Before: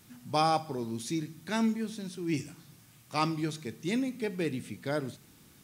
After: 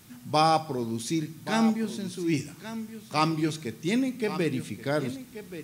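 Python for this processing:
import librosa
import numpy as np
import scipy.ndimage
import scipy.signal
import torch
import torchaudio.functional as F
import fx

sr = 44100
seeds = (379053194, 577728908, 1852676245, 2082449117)

y = x + 10.0 ** (-12.5 / 20.0) * np.pad(x, (int(1130 * sr / 1000.0), 0))[:len(x)]
y = F.gain(torch.from_numpy(y), 4.5).numpy()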